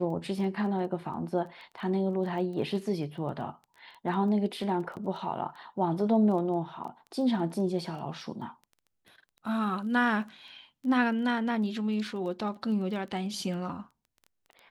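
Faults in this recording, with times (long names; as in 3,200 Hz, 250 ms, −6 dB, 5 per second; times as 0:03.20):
surface crackle 11 per second −39 dBFS
0:04.96–0:04.97: drop-out 8.6 ms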